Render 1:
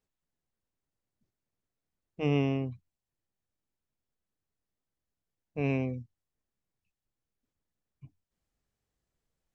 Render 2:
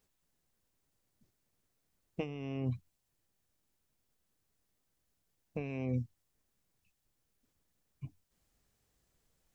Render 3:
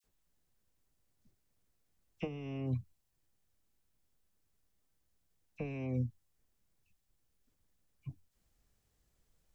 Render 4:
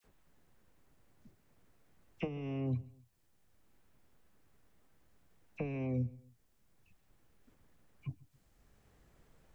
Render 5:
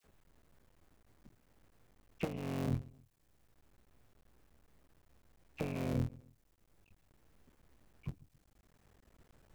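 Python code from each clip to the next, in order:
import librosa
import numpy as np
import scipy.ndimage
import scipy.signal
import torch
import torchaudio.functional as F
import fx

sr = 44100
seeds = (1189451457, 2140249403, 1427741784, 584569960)

y1 = fx.high_shelf(x, sr, hz=4900.0, db=5.5)
y1 = fx.over_compress(y1, sr, threshold_db=-37.0, ratio=-1.0)
y2 = fx.low_shelf(y1, sr, hz=79.0, db=8.0)
y2 = fx.dispersion(y2, sr, late='lows', ms=42.0, hz=1700.0)
y2 = F.gain(torch.from_numpy(y2), -2.0).numpy()
y3 = fx.echo_feedback(y2, sr, ms=133, feedback_pct=33, wet_db=-22)
y3 = fx.band_squash(y3, sr, depth_pct=40)
y3 = F.gain(torch.from_numpy(y3), 2.5).numpy()
y4 = fx.cycle_switch(y3, sr, every=3, mode='muted')
y4 = F.gain(torch.from_numpy(y4), 1.5).numpy()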